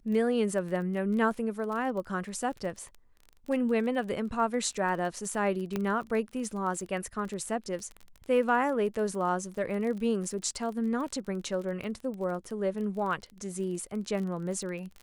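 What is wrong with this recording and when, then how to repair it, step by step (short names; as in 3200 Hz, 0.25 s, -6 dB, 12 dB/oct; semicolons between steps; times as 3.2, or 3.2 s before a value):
crackle 26/s -36 dBFS
5.76 pop -17 dBFS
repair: de-click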